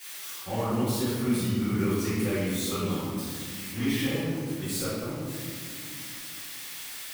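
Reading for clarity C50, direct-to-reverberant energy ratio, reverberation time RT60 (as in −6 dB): −3.5 dB, −17.0 dB, 2.2 s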